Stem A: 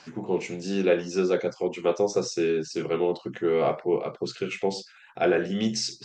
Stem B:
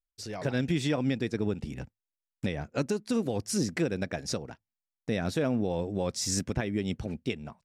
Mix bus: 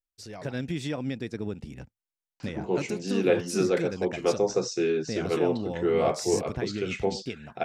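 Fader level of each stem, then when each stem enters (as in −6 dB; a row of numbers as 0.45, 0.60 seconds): −1.0, −3.5 decibels; 2.40, 0.00 seconds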